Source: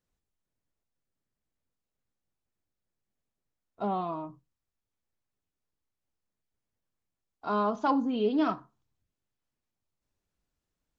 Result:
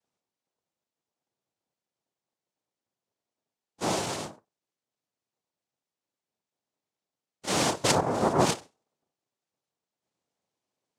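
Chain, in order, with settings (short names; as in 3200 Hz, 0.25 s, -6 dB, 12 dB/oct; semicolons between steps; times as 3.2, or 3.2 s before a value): noise vocoder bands 2; gain +2 dB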